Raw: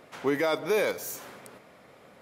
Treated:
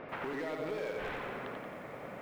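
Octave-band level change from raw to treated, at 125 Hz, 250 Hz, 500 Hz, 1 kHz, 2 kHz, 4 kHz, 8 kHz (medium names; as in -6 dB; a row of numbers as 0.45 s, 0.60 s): -4.0 dB, -8.0 dB, -9.5 dB, -5.0 dB, -7.0 dB, -11.0 dB, under -20 dB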